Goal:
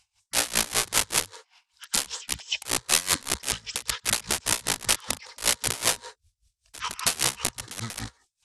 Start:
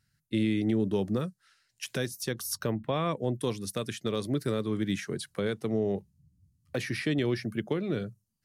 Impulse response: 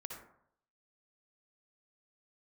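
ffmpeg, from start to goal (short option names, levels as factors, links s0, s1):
-filter_complex "[0:a]acrossover=split=5400[s0][s1];[s1]acompressor=threshold=0.00355:ratio=4:attack=1:release=60[s2];[s0][s2]amix=inputs=2:normalize=0,aeval=exprs='(mod(20*val(0)+1,2)-1)/20':c=same,crystalizer=i=7:c=0,asetrate=24046,aresample=44100,atempo=1.83401,asplit=2[s3][s4];[s4]highpass=f=410:w=0.5412,highpass=f=410:w=1.3066,equalizer=f=460:t=q:w=4:g=8,equalizer=f=670:t=q:w=4:g=-8,equalizer=f=960:t=q:w=4:g=7,equalizer=f=1600:t=q:w=4:g=5,equalizer=f=2600:t=q:w=4:g=-7,equalizer=f=4000:t=q:w=4:g=7,lowpass=f=8300:w=0.5412,lowpass=f=8300:w=1.3066[s5];[1:a]atrim=start_sample=2205,afade=t=out:st=0.14:d=0.01,atrim=end_sample=6615,adelay=97[s6];[s5][s6]afir=irnorm=-1:irlink=0,volume=0.237[s7];[s3][s7]amix=inputs=2:normalize=0,aeval=exprs='val(0)*pow(10,-21*(0.5-0.5*cos(2*PI*5.1*n/s))/20)':c=same"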